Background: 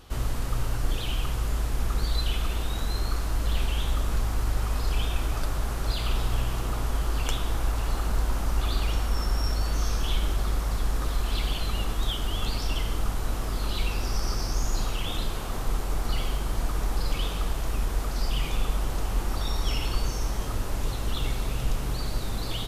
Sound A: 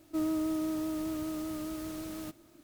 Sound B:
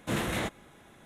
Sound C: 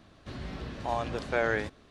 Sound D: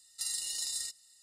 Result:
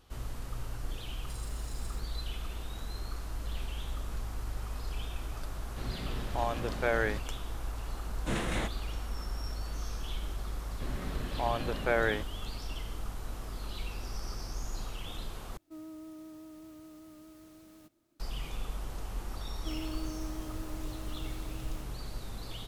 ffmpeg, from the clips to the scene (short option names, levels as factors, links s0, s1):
-filter_complex "[3:a]asplit=2[s0][s1];[1:a]asplit=2[s2][s3];[0:a]volume=0.282[s4];[4:a]aeval=exprs='val(0)*gte(abs(val(0)),0.00708)':c=same[s5];[2:a]aresample=22050,aresample=44100[s6];[s1]lowpass=3800[s7];[s4]asplit=2[s8][s9];[s8]atrim=end=15.574[s10];[s2]atrim=end=2.63,asetpts=PTS-STARTPTS,volume=0.178[s11];[s9]atrim=start=18.196[s12];[s5]atrim=end=1.22,asetpts=PTS-STARTPTS,volume=0.15,afade=t=in:d=0.004:c=hsin,afade=t=out:st=1.216:d=0.004:c=hsin,adelay=1090[s13];[s0]atrim=end=1.9,asetpts=PTS-STARTPTS,volume=0.841,afade=t=in:d=0.004:c=hsin,afade=t=out:st=1.896:d=0.004:c=hsin,adelay=5500[s14];[s6]atrim=end=1.05,asetpts=PTS-STARTPTS,volume=0.708,afade=t=in:d=0.004:c=hsin,afade=t=out:st=1.046:d=0.004:c=hsin,adelay=8190[s15];[s7]atrim=end=1.9,asetpts=PTS-STARTPTS,volume=0.944,afade=t=in:d=0.004:c=hsin,afade=t=out:st=1.896:d=0.004:c=hsin,adelay=10540[s16];[s3]atrim=end=2.63,asetpts=PTS-STARTPTS,volume=0.316,afade=t=in:d=0.004:c=hsin,afade=t=out:st=2.626:d=0.004:c=hsin,adelay=19520[s17];[s10][s11]acrossfade=d=0.004:c1=hsin:c2=hsin[s18];[s18][s12]acrossfade=d=0.004:c1=hsin:c2=hsin[s19];[s19][s13][s14][s15][s16][s17]amix=inputs=6:normalize=0"